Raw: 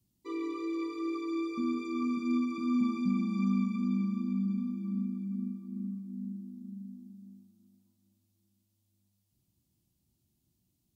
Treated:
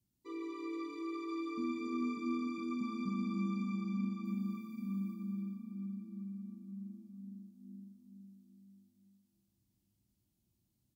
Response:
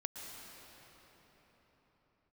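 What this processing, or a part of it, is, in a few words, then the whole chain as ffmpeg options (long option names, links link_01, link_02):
cave: -filter_complex "[0:a]asettb=1/sr,asplit=3[link_01][link_02][link_03];[link_01]atrim=end=4.254[link_04];[link_02]atrim=start=4.25:end=5.14,asetpts=PTS-STARTPTS,afade=type=in:duration=0.004:curve=qsin,afade=type=out:start_time=0.886:duration=0.004:curve=qsin,aemphasis=mode=production:type=50fm[link_05];[link_03]atrim=start=5.136[link_06];[link_04][link_05]acrossfade=duration=0.004:curve1=hsin:curve2=qsin[link_07];[link_07][link_06]acrossfade=duration=0.004:curve1=qsin:curve2=hsin,aecho=1:1:288:0.355[link_08];[1:a]atrim=start_sample=2205[link_09];[link_08][link_09]afir=irnorm=-1:irlink=0,volume=-3.5dB"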